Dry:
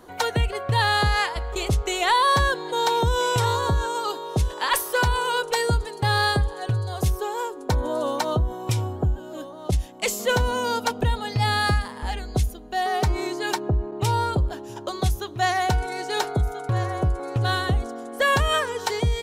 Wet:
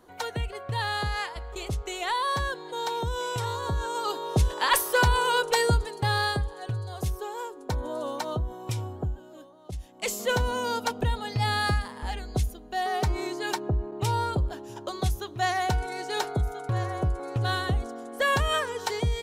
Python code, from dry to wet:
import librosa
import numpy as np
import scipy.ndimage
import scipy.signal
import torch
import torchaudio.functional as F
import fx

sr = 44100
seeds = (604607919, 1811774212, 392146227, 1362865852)

y = fx.gain(x, sr, db=fx.line((3.57, -8.5), (4.25, 0.0), (5.63, 0.0), (6.47, -7.0), (9.02, -7.0), (9.66, -16.0), (10.11, -4.0)))